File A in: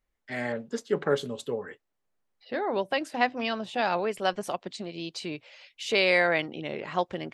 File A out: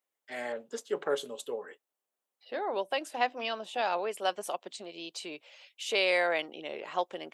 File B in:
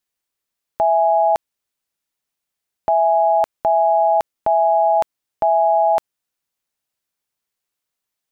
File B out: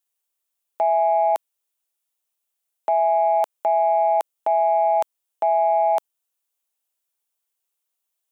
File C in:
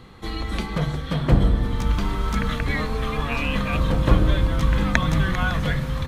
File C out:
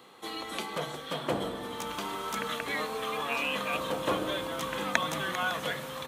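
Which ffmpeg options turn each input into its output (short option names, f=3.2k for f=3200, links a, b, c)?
-filter_complex "[0:a]highpass=440,acrossover=split=1300[a][b];[a]acontrast=46[c];[b]aexciter=amount=2.4:drive=2.3:freq=2.6k[d];[c][d]amix=inputs=2:normalize=0,volume=-7.5dB"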